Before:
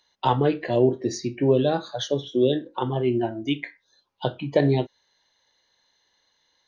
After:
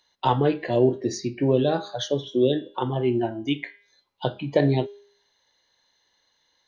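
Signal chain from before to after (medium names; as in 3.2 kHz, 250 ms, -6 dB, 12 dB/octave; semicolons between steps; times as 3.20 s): de-hum 202.8 Hz, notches 26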